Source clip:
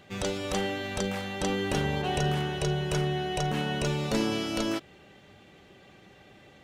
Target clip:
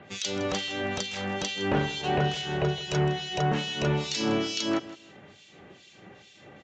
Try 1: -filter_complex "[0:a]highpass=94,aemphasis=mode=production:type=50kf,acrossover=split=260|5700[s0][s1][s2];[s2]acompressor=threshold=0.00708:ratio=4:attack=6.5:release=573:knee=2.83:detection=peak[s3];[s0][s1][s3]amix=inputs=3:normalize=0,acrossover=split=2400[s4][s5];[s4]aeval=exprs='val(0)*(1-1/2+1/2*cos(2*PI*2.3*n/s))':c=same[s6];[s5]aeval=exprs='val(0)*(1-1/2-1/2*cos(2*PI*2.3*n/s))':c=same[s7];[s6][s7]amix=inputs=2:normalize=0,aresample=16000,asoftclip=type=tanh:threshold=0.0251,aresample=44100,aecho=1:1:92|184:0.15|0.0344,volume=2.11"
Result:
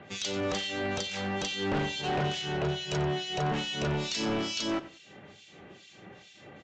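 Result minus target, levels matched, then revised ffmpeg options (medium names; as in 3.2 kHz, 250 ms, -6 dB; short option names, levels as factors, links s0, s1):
echo 69 ms early; saturation: distortion +10 dB
-filter_complex "[0:a]highpass=94,aemphasis=mode=production:type=50kf,acrossover=split=260|5700[s0][s1][s2];[s2]acompressor=threshold=0.00708:ratio=4:attack=6.5:release=573:knee=2.83:detection=peak[s3];[s0][s1][s3]amix=inputs=3:normalize=0,acrossover=split=2400[s4][s5];[s4]aeval=exprs='val(0)*(1-1/2+1/2*cos(2*PI*2.3*n/s))':c=same[s6];[s5]aeval=exprs='val(0)*(1-1/2-1/2*cos(2*PI*2.3*n/s))':c=same[s7];[s6][s7]amix=inputs=2:normalize=0,aresample=16000,asoftclip=type=tanh:threshold=0.0708,aresample=44100,aecho=1:1:161|322:0.15|0.0344,volume=2.11"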